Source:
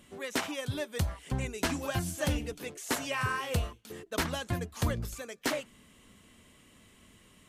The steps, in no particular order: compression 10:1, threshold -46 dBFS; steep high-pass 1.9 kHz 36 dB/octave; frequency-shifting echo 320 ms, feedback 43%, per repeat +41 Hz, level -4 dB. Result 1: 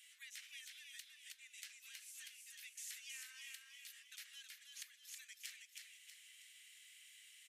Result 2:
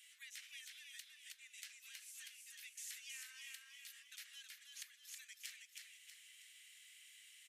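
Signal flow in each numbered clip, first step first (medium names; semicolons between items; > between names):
compression > steep high-pass > frequency-shifting echo; compression > frequency-shifting echo > steep high-pass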